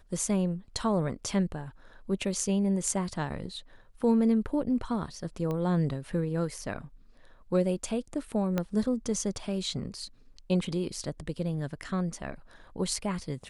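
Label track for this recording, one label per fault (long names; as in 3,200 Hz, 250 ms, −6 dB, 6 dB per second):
5.510000	5.510000	click −22 dBFS
8.580000	8.580000	click −15 dBFS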